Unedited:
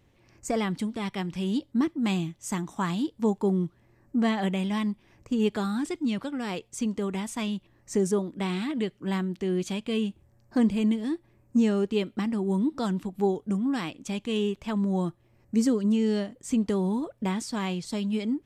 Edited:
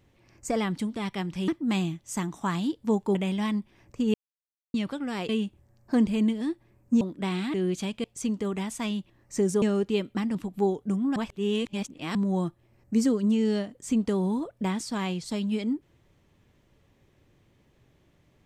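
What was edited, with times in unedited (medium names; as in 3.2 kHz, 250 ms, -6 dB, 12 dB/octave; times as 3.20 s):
1.48–1.83 s: delete
3.50–4.47 s: delete
5.46–6.06 s: mute
6.61–8.19 s: swap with 9.92–11.64 s
8.72–9.42 s: delete
12.37–12.96 s: delete
13.77–14.76 s: reverse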